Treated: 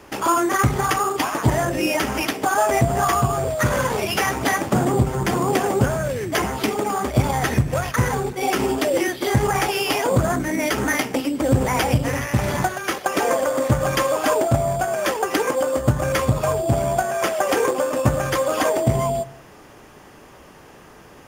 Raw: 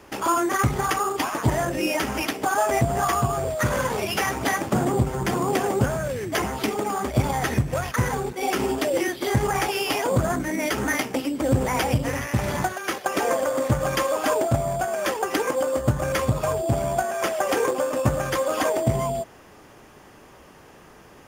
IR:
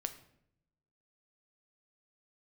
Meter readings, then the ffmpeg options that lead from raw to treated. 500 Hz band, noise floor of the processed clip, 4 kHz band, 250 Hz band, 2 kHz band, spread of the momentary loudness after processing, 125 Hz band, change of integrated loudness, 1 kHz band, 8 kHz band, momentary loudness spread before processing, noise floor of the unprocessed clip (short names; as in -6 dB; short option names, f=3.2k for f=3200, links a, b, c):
+3.0 dB, -46 dBFS, +3.0 dB, +3.0 dB, +3.0 dB, 3 LU, +3.5 dB, +3.0 dB, +3.0 dB, +3.0 dB, 4 LU, -49 dBFS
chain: -filter_complex "[0:a]asplit=2[a][b];[1:a]atrim=start_sample=2205[c];[b][c]afir=irnorm=-1:irlink=0,volume=-6dB[d];[a][d]amix=inputs=2:normalize=0"